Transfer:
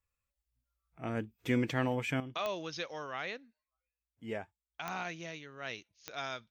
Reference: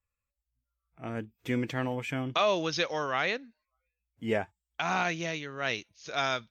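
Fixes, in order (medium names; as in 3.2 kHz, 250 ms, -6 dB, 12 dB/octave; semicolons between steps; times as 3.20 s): de-click; trim 0 dB, from 2.20 s +10 dB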